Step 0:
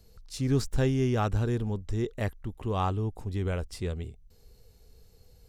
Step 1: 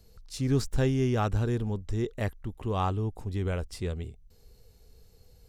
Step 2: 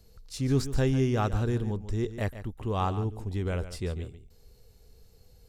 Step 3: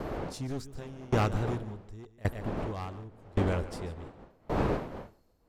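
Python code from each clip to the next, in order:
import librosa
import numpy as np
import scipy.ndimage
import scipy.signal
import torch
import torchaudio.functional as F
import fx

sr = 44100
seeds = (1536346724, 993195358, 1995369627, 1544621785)

y1 = x
y2 = y1 + 10.0 ** (-12.5 / 20.0) * np.pad(y1, (int(143 * sr / 1000.0), 0))[:len(y1)]
y3 = np.minimum(y2, 2.0 * 10.0 ** (-25.5 / 20.0) - y2)
y3 = fx.dmg_wind(y3, sr, seeds[0], corner_hz=560.0, level_db=-35.0)
y3 = fx.tremolo_decay(y3, sr, direction='decaying', hz=0.89, depth_db=26)
y3 = F.gain(torch.from_numpy(y3), 3.5).numpy()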